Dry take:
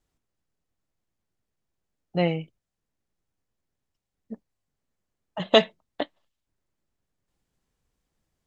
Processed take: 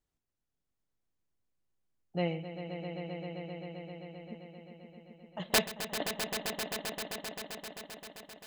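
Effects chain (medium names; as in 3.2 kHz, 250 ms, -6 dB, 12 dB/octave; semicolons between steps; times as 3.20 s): integer overflow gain 9 dB; echo with a slow build-up 131 ms, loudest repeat 5, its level -10 dB; trim -8.5 dB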